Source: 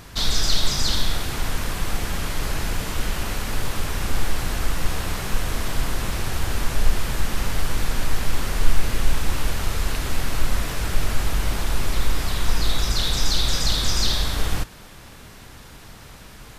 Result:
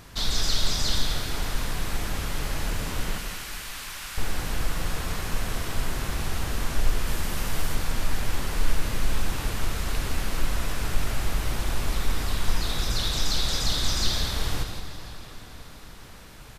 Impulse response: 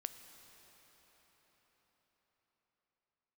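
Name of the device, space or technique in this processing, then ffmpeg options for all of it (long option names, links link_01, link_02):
cathedral: -filter_complex "[0:a]asettb=1/sr,asplit=3[link_01][link_02][link_03];[link_01]atrim=end=3.184[link_04];[link_02]atrim=start=3.18:end=4.18,asetpts=PTS-STARTPTS,afade=type=in:duration=0.004:curve=qsin,afade=type=out:start_time=0.996:duration=0.004:curve=qsin,highpass=1400[link_05];[link_03]atrim=start=4.176[link_06];[link_04][link_05]acrossfade=duration=0.004:curve1=hsin:curve2=qsin[link_07];[link_07][link_06]acrossfade=duration=0.004:curve1=qsin:curve2=hsin[link_08];[1:a]atrim=start_sample=2205[link_09];[link_08][link_09]afir=irnorm=-1:irlink=0,asettb=1/sr,asplit=3[link_10][link_11][link_12];[link_10]atrim=end=7.074[link_13];[link_11]atrim=start=7.07:end=7.75,asetpts=PTS-STARTPTS,afade=type=in:duration=0.004:curve=qsin,afade=type=out:start_time=0.676:duration=0.004:curve=qsin,highshelf=frequency=7700:gain=5[link_14];[link_12]atrim=start=7.746[link_15];[link_13][link_14]acrossfade=duration=0.004:curve1=hsin:curve2=qsin[link_16];[link_16][link_15]acrossfade=duration=0.004:curve1=qsin:curve2=hsin,aecho=1:1:166:0.398,volume=-1.5dB"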